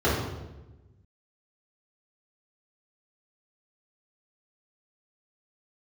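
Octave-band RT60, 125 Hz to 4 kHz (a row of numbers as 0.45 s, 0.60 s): 1.8 s, 1.4 s, 1.2 s, 0.95 s, 0.85 s, 0.80 s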